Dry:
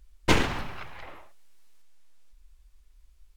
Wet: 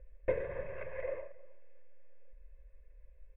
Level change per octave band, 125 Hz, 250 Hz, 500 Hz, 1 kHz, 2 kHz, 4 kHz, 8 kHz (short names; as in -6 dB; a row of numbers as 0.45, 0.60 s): -16.0 dB, -21.0 dB, -1.0 dB, -19.0 dB, -15.5 dB, under -35 dB, under -40 dB